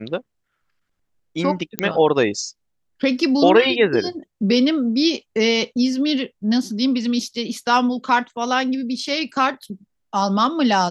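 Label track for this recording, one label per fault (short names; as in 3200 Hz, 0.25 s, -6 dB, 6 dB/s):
1.790000	1.790000	pop -4 dBFS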